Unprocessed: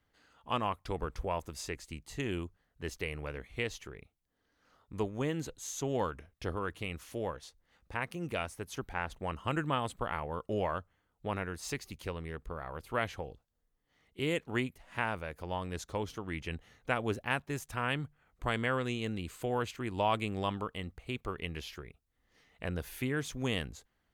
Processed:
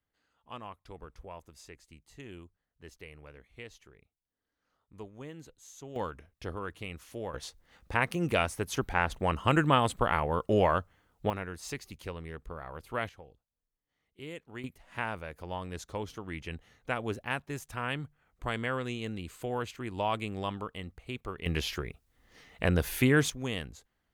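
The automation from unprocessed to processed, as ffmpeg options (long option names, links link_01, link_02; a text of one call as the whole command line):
ffmpeg -i in.wav -af "asetnsamples=nb_out_samples=441:pad=0,asendcmd='5.96 volume volume -2dB;7.34 volume volume 8dB;11.3 volume volume -1dB;13.09 volume volume -10.5dB;14.64 volume volume -1dB;21.46 volume volume 10dB;23.3 volume volume -1.5dB',volume=-11dB" out.wav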